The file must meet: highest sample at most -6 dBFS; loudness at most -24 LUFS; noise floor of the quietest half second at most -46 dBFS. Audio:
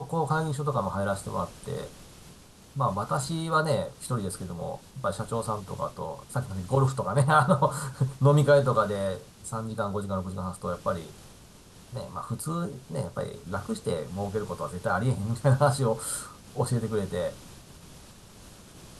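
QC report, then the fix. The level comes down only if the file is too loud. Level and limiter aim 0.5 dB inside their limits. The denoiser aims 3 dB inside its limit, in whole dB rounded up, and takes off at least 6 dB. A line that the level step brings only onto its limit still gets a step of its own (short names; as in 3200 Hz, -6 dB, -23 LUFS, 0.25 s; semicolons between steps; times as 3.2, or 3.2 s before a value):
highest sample -8.5 dBFS: OK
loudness -28.5 LUFS: OK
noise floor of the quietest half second -51 dBFS: OK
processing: none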